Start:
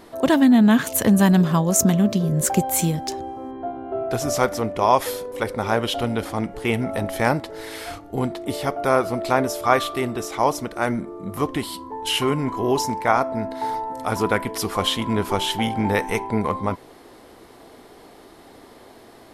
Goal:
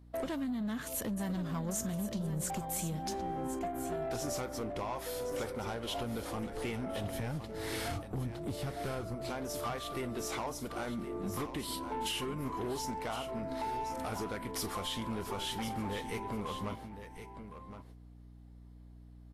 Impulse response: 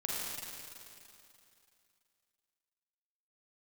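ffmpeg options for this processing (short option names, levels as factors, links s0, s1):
-filter_complex "[0:a]agate=range=0.0398:threshold=0.0158:ratio=16:detection=peak,asettb=1/sr,asplit=3[s0][s1][s2];[s0]atrim=end=7.044[s3];[s1]atrim=start=7.04:end=9.15,asetpts=PTS-STARTPTS,afade=t=in:d=0.004:c=qsin,afade=t=out:st=2.106:d=0.004:c=qsin,equalizer=f=110:t=o:w=2.1:g=13[s4];[s2]atrim=start=9.146[s5];[s3][s4]acrossfade=d=0.004:c1=hsin:c2=qsin[s6];[s6][s5]acrossfade=d=0.004:c1=qsin:c2=hsin,acompressor=threshold=0.0282:ratio=10,aeval=exprs='0.075*(cos(1*acos(clip(val(0)/0.075,-1,1)))-cos(1*PI/2))+0.0015*(cos(8*acos(clip(val(0)/0.075,-1,1)))-cos(8*PI/2))':c=same,asoftclip=type=tanh:threshold=0.0282,aeval=exprs='val(0)+0.002*(sin(2*PI*60*n/s)+sin(2*PI*2*60*n/s)/2+sin(2*PI*3*60*n/s)/3+sin(2*PI*4*60*n/s)/4+sin(2*PI*5*60*n/s)/5)':c=same,aecho=1:1:1067:0.299" -ar 44100 -c:a libvorbis -b:a 32k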